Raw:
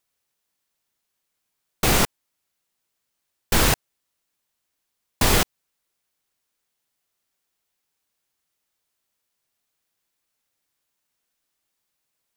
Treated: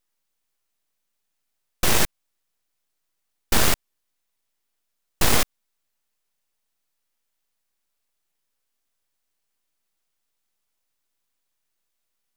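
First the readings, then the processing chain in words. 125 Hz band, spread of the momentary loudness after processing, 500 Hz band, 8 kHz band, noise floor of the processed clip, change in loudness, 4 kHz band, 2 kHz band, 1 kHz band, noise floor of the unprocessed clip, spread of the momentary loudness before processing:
-4.5 dB, 7 LU, -2.5 dB, 0.0 dB, -77 dBFS, -1.0 dB, -1.0 dB, -1.5 dB, -2.5 dB, -79 dBFS, 7 LU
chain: full-wave rectifier; gain +1.5 dB

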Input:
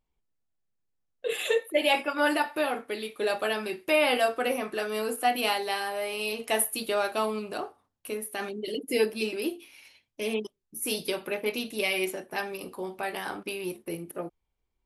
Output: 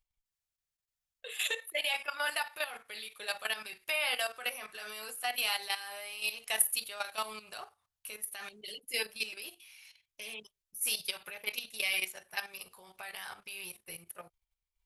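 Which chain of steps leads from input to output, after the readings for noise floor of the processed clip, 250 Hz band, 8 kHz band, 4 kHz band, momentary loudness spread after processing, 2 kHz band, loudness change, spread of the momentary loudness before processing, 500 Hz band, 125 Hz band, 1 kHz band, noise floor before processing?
under -85 dBFS, -25.0 dB, 0.0 dB, -2.0 dB, 16 LU, -4.0 dB, -5.5 dB, 12 LU, -17.0 dB, n/a, -11.0 dB, -80 dBFS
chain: passive tone stack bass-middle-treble 10-0-10; level quantiser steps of 12 dB; gain +4.5 dB

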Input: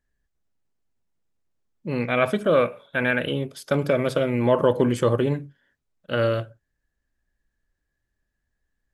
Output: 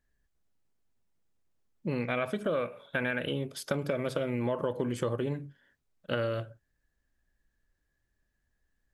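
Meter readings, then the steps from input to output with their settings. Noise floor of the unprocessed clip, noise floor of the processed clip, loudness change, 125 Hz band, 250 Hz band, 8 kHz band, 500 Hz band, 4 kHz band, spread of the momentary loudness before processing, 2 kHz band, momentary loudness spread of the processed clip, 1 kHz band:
-79 dBFS, -79 dBFS, -9.5 dB, -8.5 dB, -9.0 dB, -4.5 dB, -10.5 dB, -7.0 dB, 10 LU, -8.5 dB, 7 LU, -10.5 dB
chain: compressor 6:1, threshold -28 dBFS, peak gain reduction 13.5 dB

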